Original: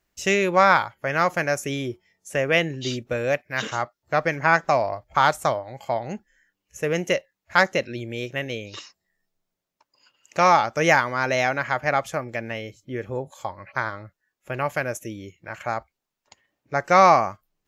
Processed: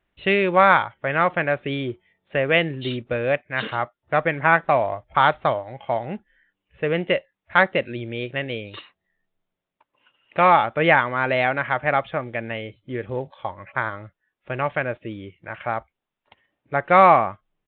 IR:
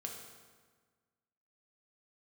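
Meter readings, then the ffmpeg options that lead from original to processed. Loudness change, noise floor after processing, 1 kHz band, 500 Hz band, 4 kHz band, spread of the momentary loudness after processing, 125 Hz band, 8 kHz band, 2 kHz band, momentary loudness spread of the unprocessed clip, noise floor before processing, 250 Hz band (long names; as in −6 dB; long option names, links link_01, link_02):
+1.5 dB, −84 dBFS, +1.5 dB, +1.5 dB, 0.0 dB, 16 LU, +1.5 dB, below −40 dB, +1.5 dB, 16 LU, −84 dBFS, +1.5 dB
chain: -af "acrusher=bits=6:mode=log:mix=0:aa=0.000001,aresample=8000,aresample=44100,volume=1.5dB"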